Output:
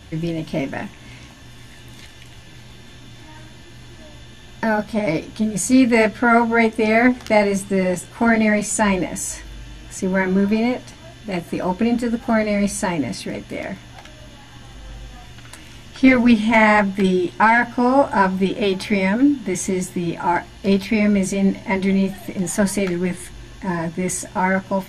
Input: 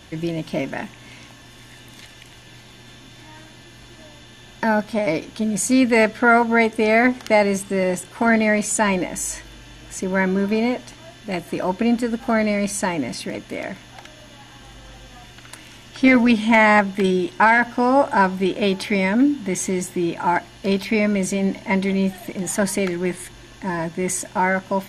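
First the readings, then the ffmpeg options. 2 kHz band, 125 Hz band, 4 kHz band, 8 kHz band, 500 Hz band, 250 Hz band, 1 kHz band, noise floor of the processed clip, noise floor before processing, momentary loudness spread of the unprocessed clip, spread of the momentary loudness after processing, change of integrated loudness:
0.0 dB, +3.0 dB, 0.0 dB, -0.5 dB, +0.5 dB, +2.0 dB, 0.0 dB, -42 dBFS, -45 dBFS, 14 LU, 14 LU, +1.0 dB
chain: -af "lowshelf=f=120:g=11,flanger=delay=9.6:depth=5.7:regen=-35:speed=1.3:shape=triangular,volume=3.5dB"

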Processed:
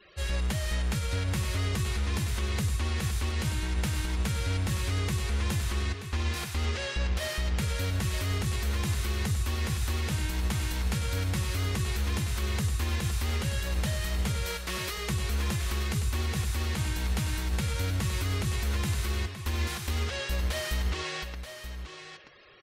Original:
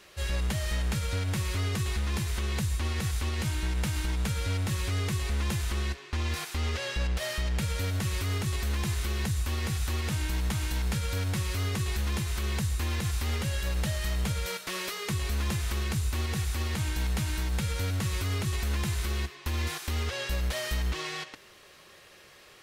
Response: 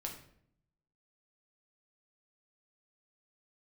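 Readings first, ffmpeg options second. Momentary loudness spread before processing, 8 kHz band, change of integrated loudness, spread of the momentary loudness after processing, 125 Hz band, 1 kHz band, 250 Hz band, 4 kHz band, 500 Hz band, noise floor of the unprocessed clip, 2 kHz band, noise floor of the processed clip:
2 LU, 0.0 dB, +0.5 dB, 2 LU, +0.5 dB, +0.5 dB, +0.5 dB, +0.5 dB, +0.5 dB, -54 dBFS, +0.5 dB, -41 dBFS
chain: -filter_complex "[0:a]afftfilt=real='re*gte(hypot(re,im),0.00251)':imag='im*gte(hypot(re,im),0.00251)':win_size=1024:overlap=0.75,asplit=2[a][b];[b]aecho=0:1:930:0.316[c];[a][c]amix=inputs=2:normalize=0"

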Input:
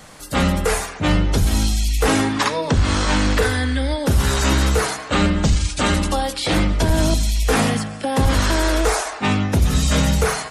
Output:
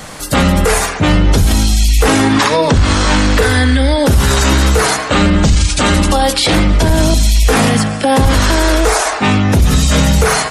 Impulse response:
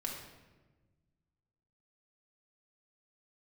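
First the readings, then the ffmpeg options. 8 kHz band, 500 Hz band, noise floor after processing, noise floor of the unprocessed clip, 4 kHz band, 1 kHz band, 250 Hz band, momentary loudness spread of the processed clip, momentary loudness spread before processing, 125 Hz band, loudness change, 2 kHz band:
+8.0 dB, +7.5 dB, -21 dBFS, -33 dBFS, +8.0 dB, +7.5 dB, +7.5 dB, 2 LU, 3 LU, +7.0 dB, +7.5 dB, +7.5 dB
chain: -af "alimiter=level_in=14.5dB:limit=-1dB:release=50:level=0:latency=1,volume=-2dB"

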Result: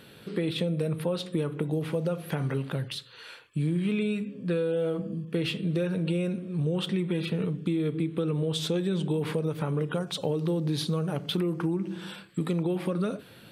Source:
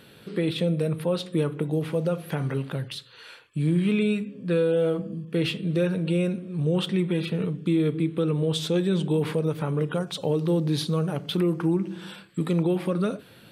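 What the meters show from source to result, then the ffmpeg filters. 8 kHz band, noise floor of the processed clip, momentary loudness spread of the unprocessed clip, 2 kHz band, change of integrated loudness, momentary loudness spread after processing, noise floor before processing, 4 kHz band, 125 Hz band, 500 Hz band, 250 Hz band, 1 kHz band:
-2.0 dB, -51 dBFS, 7 LU, -3.0 dB, -3.5 dB, 5 LU, -51 dBFS, -2.0 dB, -3.0 dB, -4.0 dB, -3.5 dB, -3.0 dB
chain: -af "acompressor=threshold=-24dB:ratio=6"

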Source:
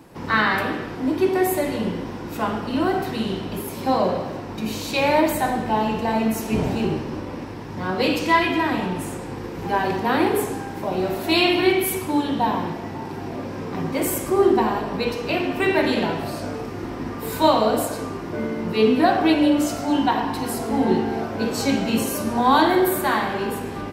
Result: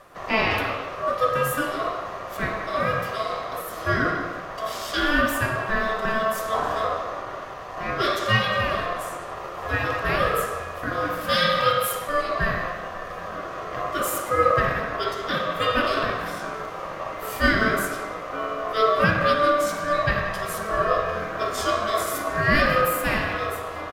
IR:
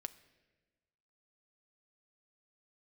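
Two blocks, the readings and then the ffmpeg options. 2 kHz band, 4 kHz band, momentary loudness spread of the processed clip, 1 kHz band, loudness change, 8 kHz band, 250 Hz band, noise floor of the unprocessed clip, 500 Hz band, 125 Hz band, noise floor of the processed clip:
+2.5 dB, -1.0 dB, 12 LU, -1.0 dB, -2.0 dB, -3.0 dB, -10.5 dB, -33 dBFS, -2.5 dB, -1.0 dB, -35 dBFS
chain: -filter_complex "[0:a]aeval=exprs='val(0)*sin(2*PI*880*n/s)':c=same,asplit=2[a][b];[b]adelay=180,highpass=300,lowpass=3.4k,asoftclip=type=hard:threshold=-13dB,volume=-9dB[c];[a][c]amix=inputs=2:normalize=0"

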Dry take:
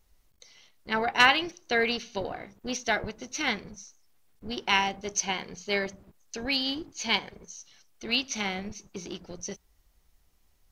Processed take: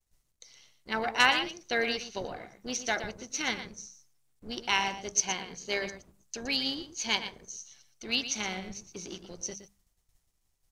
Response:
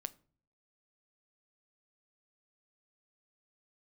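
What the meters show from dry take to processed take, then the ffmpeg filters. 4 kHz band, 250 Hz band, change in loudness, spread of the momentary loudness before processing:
-2.0 dB, -4.0 dB, -2.5 dB, 18 LU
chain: -af "equalizer=f=8k:t=o:w=1.2:g=8,agate=range=-33dB:threshold=-57dB:ratio=3:detection=peak,tremolo=f=130:d=0.333,bandreject=f=50:t=h:w=6,bandreject=f=100:t=h:w=6,bandreject=f=150:t=h:w=6,bandreject=f=200:t=h:w=6,aecho=1:1:118:0.282,volume=-2.5dB"

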